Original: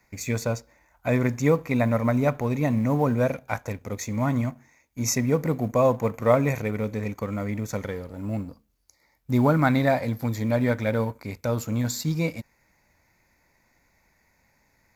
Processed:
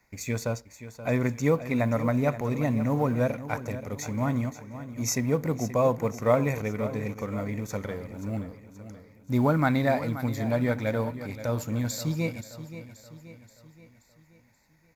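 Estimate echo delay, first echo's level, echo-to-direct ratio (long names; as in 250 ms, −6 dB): 528 ms, −13.0 dB, −11.5 dB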